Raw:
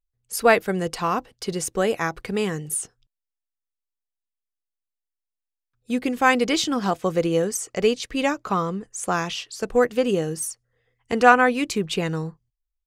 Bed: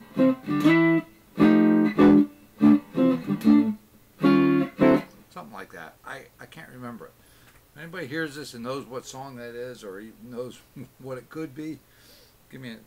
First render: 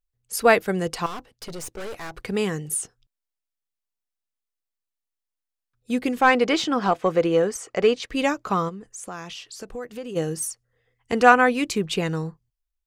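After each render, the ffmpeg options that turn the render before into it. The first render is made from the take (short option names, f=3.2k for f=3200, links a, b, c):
-filter_complex "[0:a]asettb=1/sr,asplit=3[a][b][c];[a]atrim=end=1.064[d];[b]atrim=start=1.06:end=2.14,asetpts=PTS-STARTPTS,afade=t=in:d=0.004:c=qsin,afade=t=out:st=1.076:d=0.004:c=qsin,aeval=exprs='(tanh(39.8*val(0)+0.75)-tanh(0.75))/39.8':c=same[e];[c]atrim=start=2.136[f];[d][e]acrossfade=d=0.004:c1=hsin:c2=qsin[g];[g][f]acrossfade=d=0.004:c1=qsin:c2=hsin,asettb=1/sr,asplit=3[h][i][j];[h]atrim=end=6.214[k];[i]atrim=start=6.21:end=8.1,asetpts=PTS-STARTPTS,afade=t=in:d=0.004:c=qsin,afade=t=out:st=1.886:d=0.004:c=qsin,asplit=2[l][m];[m]highpass=f=720:p=1,volume=12dB,asoftclip=type=tanh:threshold=-3.5dB[n];[l][n]amix=inputs=2:normalize=0,lowpass=f=1.4k:p=1,volume=-6dB[o];[j]atrim=start=8.096[p];[k][o]acrossfade=d=0.004:c1=hsin:c2=qsin[q];[q][p]acrossfade=d=0.004:c1=qsin:c2=hsin,asplit=3[r][s][t];[r]afade=t=out:st=8.68:d=0.02[u];[s]acompressor=threshold=-37dB:ratio=2.5:attack=3.2:release=140:knee=1:detection=peak,afade=t=in:st=8.68:d=0.02,afade=t=out:st=10.15:d=0.02[v];[t]afade=t=in:st=10.15:d=0.02[w];[u][v][w]amix=inputs=3:normalize=0"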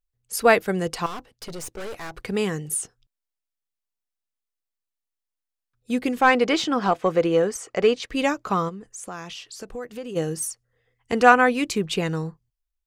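-af anull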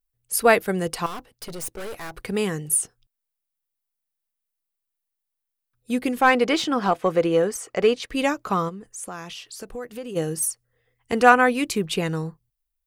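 -af "aexciter=amount=2.8:drive=2.6:freq=9.2k"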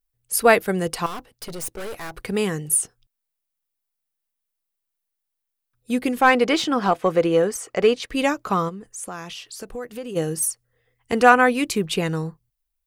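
-af "volume=1.5dB,alimiter=limit=-1dB:level=0:latency=1"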